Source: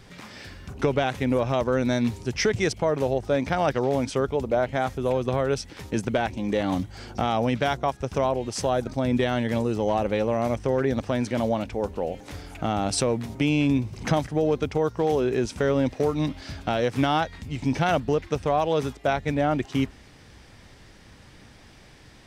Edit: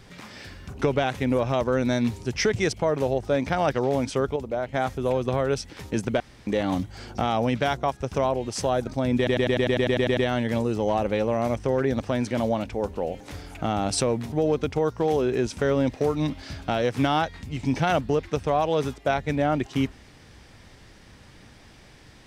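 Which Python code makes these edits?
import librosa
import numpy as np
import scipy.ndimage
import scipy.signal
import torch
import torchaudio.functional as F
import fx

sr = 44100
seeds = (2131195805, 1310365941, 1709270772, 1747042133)

y = fx.edit(x, sr, fx.clip_gain(start_s=4.36, length_s=0.38, db=-5.0),
    fx.room_tone_fill(start_s=6.2, length_s=0.27),
    fx.stutter(start_s=9.17, slice_s=0.1, count=11),
    fx.cut(start_s=13.32, length_s=0.99), tone=tone)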